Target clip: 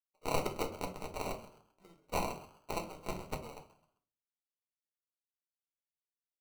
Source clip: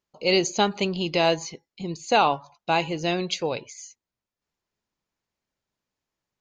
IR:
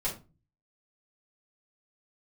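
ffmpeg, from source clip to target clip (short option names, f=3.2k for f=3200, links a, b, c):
-filter_complex "[0:a]adynamicsmooth=sensitivity=6:basefreq=510,aderivative,acrusher=samples=26:mix=1:aa=0.000001,asplit=4[a][b][c][d];[b]adelay=131,afreqshift=92,volume=-16dB[e];[c]adelay=262,afreqshift=184,volume=-25.9dB[f];[d]adelay=393,afreqshift=276,volume=-35.8dB[g];[a][e][f][g]amix=inputs=4:normalize=0,asplit=2[h][i];[1:a]atrim=start_sample=2205[j];[i][j]afir=irnorm=-1:irlink=0,volume=-5dB[k];[h][k]amix=inputs=2:normalize=0,volume=-6.5dB"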